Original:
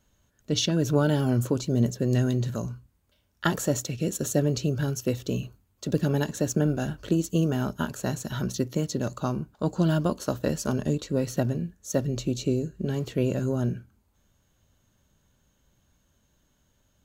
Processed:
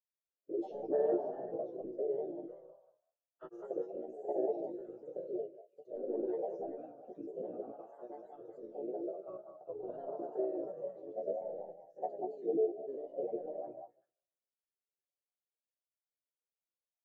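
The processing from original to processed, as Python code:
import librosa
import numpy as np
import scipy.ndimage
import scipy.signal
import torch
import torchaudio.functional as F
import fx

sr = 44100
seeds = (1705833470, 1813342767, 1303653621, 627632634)

p1 = fx.ladder_highpass(x, sr, hz=430.0, resonance_pct=60)
p2 = fx.tilt_eq(p1, sr, slope=-4.0)
p3 = fx.whisperise(p2, sr, seeds[0])
p4 = 10.0 ** (-20.5 / 20.0) * np.tanh(p3 / 10.0 ** (-20.5 / 20.0))
p5 = p3 + (p4 * librosa.db_to_amplitude(-10.0))
p6 = fx.resonator_bank(p5, sr, root=48, chord='major', decay_s=0.78)
p7 = fx.granulator(p6, sr, seeds[1], grain_ms=100.0, per_s=20.0, spray_ms=100.0, spread_st=3)
p8 = p7 + fx.echo_stepped(p7, sr, ms=191, hz=850.0, octaves=1.4, feedback_pct=70, wet_db=-2, dry=0)
p9 = fx.spectral_expand(p8, sr, expansion=1.5)
y = p9 * librosa.db_to_amplitude(12.5)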